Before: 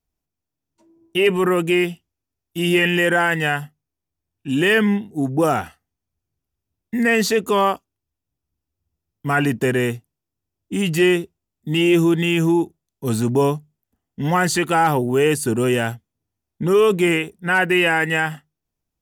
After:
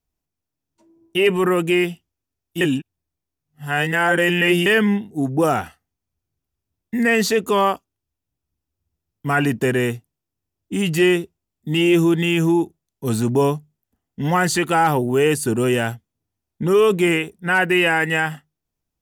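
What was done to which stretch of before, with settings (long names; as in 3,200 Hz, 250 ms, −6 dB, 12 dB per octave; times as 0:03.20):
0:02.61–0:04.66: reverse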